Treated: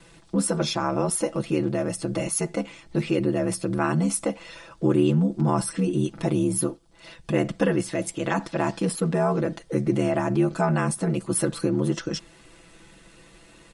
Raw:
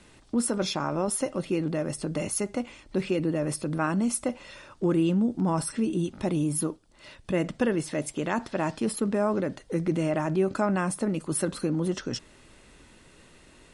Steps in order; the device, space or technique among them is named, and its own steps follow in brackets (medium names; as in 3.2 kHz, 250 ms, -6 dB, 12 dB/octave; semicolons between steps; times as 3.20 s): ring-modulated robot voice (ring modulator 37 Hz; comb 6 ms, depth 88%); trim +3.5 dB